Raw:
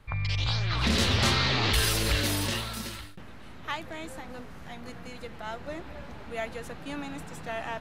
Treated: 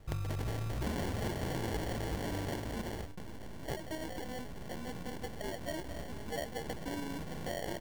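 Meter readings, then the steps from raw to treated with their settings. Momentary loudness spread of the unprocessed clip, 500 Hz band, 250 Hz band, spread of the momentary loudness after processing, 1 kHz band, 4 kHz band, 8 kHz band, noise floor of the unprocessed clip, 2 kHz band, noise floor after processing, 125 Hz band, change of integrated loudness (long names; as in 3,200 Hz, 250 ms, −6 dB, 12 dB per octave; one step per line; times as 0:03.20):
20 LU, −3.5 dB, −5.0 dB, 8 LU, −8.0 dB, −17.5 dB, −13.0 dB, −44 dBFS, −12.5 dB, −44 dBFS, −8.0 dB, −11.0 dB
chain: parametric band 2,900 Hz +4 dB 0.4 octaves
downward compressor 5 to 1, threshold −34 dBFS, peak gain reduction 13 dB
decimation without filtering 35×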